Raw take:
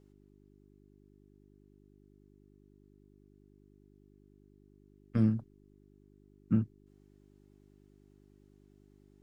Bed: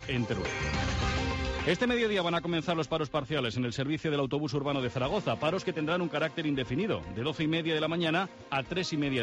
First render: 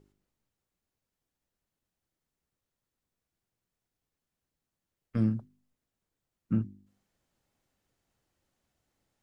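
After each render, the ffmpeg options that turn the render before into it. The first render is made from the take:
-af "bandreject=f=50:t=h:w=4,bandreject=f=100:t=h:w=4,bandreject=f=150:t=h:w=4,bandreject=f=200:t=h:w=4,bandreject=f=250:t=h:w=4,bandreject=f=300:t=h:w=4,bandreject=f=350:t=h:w=4,bandreject=f=400:t=h:w=4"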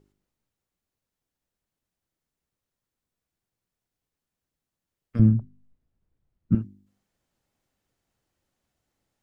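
-filter_complex "[0:a]asettb=1/sr,asplit=3[s0][s1][s2];[s0]atrim=end=5.194[s3];[s1]atrim=start=5.19:end=6.55,asetpts=PTS-STARTPTS,afade=t=in:d=0.004:c=qsin,afade=t=out:st=1.356:d=0.004:c=qsin,aemphasis=mode=reproduction:type=riaa[s4];[s2]atrim=start=6.546[s5];[s3][s4]acrossfade=d=0.004:c1=hsin:c2=qsin[s6];[s6][s5]acrossfade=d=0.004:c1=qsin:c2=hsin"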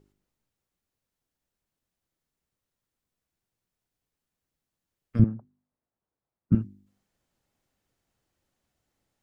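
-filter_complex "[0:a]asettb=1/sr,asplit=3[s0][s1][s2];[s0]atrim=end=5.244[s3];[s1]atrim=start=5.24:end=6.52,asetpts=PTS-STARTPTS,afade=t=in:d=0.004:c=qsin,afade=t=out:st=1.276:d=0.004:c=qsin,bandpass=f=870:t=q:w=1[s4];[s2]atrim=start=6.516[s5];[s3][s4]acrossfade=d=0.004:c1=hsin:c2=qsin[s6];[s6][s5]acrossfade=d=0.004:c1=qsin:c2=hsin"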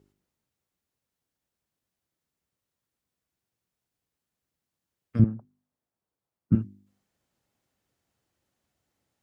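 -af "highpass=56"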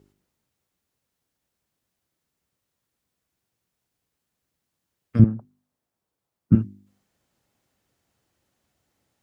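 -af "volume=1.88"

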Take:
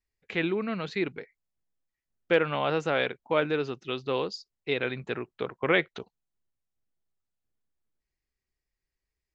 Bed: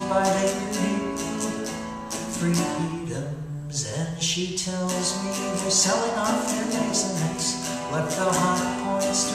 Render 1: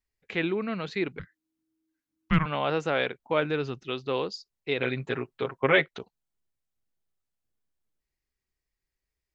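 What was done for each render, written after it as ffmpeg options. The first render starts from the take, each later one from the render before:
-filter_complex "[0:a]asettb=1/sr,asplit=3[s0][s1][s2];[s0]atrim=end=1.194[s3];[s1]atrim=start=1.19:end=2.46,asetpts=PTS-STARTPTS,afade=t=in:d=0.004:c=qsin,afade=t=out:st=1.266:d=0.004:c=qsin,afreqshift=-320[s4];[s2]atrim=start=2.456[s5];[s3][s4]acrossfade=d=0.004:c1=hsin:c2=qsin[s6];[s6][s5]acrossfade=d=0.004:c1=qsin:c2=hsin,asettb=1/sr,asplit=3[s7][s8][s9];[s7]atrim=end=3.224[s10];[s8]atrim=start=3.22:end=3.83,asetpts=PTS-STARTPTS,afade=t=in:d=0.004:c=qsin,afade=t=out:st=0.606:d=0.004:c=qsin,asubboost=boost=9:cutoff=220[s11];[s9]atrim=start=3.826[s12];[s10][s11]acrossfade=d=0.004:c1=hsin:c2=qsin[s13];[s13][s12]acrossfade=d=0.004:c1=qsin:c2=hsin,asettb=1/sr,asplit=3[s14][s15][s16];[s14]atrim=end=4.784[s17];[s15]atrim=start=4.78:end=5.86,asetpts=PTS-STARTPTS,afade=t=in:d=0.004:c=qsin,afade=t=out:st=1.076:d=0.004:c=qsin,aecho=1:1:7.4:0.84,atrim=end_sample=47628[s18];[s16]atrim=start=5.856[s19];[s17][s18]acrossfade=d=0.004:c1=hsin:c2=qsin[s20];[s20][s19]acrossfade=d=0.004:c1=qsin:c2=hsin"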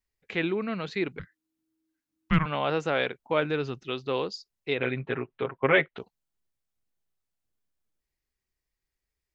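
-filter_complex "[0:a]asettb=1/sr,asplit=3[s0][s1][s2];[s0]atrim=end=4.754[s3];[s1]atrim=start=4.75:end=5.98,asetpts=PTS-STARTPTS,afade=t=in:d=0.004:c=qsin,afade=t=out:st=1.226:d=0.004:c=qsin,lowpass=f=3200:w=0.5412,lowpass=f=3200:w=1.3066[s4];[s2]atrim=start=5.976[s5];[s3][s4]acrossfade=d=0.004:c1=hsin:c2=qsin[s6];[s6][s5]acrossfade=d=0.004:c1=qsin:c2=hsin"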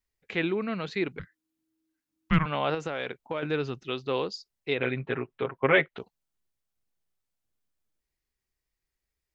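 -filter_complex "[0:a]asettb=1/sr,asplit=3[s0][s1][s2];[s0]atrim=end=2.744[s3];[s1]atrim=start=2.74:end=3.43,asetpts=PTS-STARTPTS,afade=t=in:d=0.004:c=qsin,afade=t=out:st=0.686:d=0.004:c=qsin,acompressor=threshold=0.0447:ratio=6:attack=3.2:release=140:knee=1:detection=peak[s4];[s2]atrim=start=3.426[s5];[s3][s4]acrossfade=d=0.004:c1=hsin:c2=qsin[s6];[s6][s5]acrossfade=d=0.004:c1=qsin:c2=hsin"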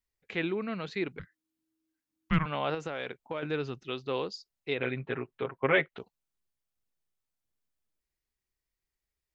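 -af "volume=0.668"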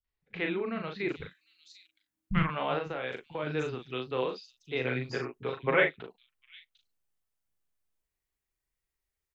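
-filter_complex "[0:a]asplit=2[s0][s1];[s1]adelay=39,volume=0.562[s2];[s0][s2]amix=inputs=2:normalize=0,acrossover=split=200|4500[s3][s4][s5];[s4]adelay=40[s6];[s5]adelay=790[s7];[s3][s6][s7]amix=inputs=3:normalize=0"

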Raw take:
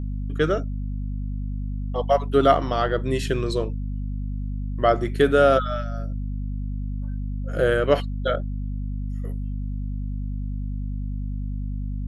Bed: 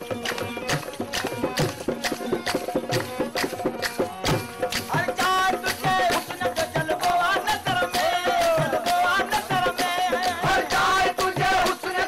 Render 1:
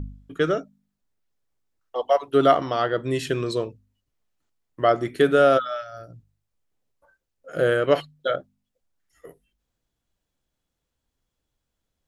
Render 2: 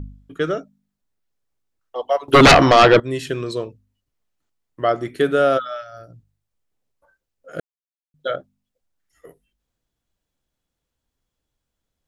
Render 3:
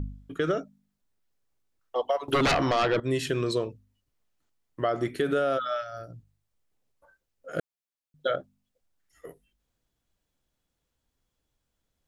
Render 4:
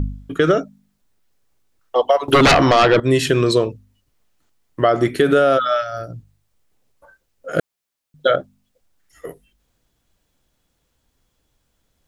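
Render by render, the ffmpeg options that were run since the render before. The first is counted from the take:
-af "bandreject=f=50:t=h:w=4,bandreject=f=100:t=h:w=4,bandreject=f=150:t=h:w=4,bandreject=f=200:t=h:w=4,bandreject=f=250:t=h:w=4"
-filter_complex "[0:a]asettb=1/sr,asplit=3[s0][s1][s2];[s0]atrim=end=2.284[s3];[s1]atrim=start=2.28:end=3,asetpts=PTS-STARTPTS,afade=t=in:d=0.004:c=qsin,afade=t=out:st=0.716:d=0.004:c=qsin,aeval=exprs='0.562*sin(PI/2*4.47*val(0)/0.562)':c=same[s4];[s2]atrim=start=2.996[s5];[s3][s4]acrossfade=d=0.004:c1=hsin:c2=qsin[s6];[s6][s5]acrossfade=d=0.004:c1=qsin:c2=hsin,asplit=3[s7][s8][s9];[s7]atrim=end=7.6,asetpts=PTS-STARTPTS,afade=t=out:st=7.596:d=0.004:c=hsin[s10];[s8]atrim=start=7.6:end=8.14,asetpts=PTS-STARTPTS,volume=0[s11];[s9]atrim=start=8.14,asetpts=PTS-STARTPTS,afade=t=in:d=0.004:c=hsin[s12];[s10][s11][s12]concat=n=3:v=0:a=1"
-af "alimiter=limit=0.2:level=0:latency=1:release=57,acompressor=threshold=0.0794:ratio=4"
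-af "volume=3.76"

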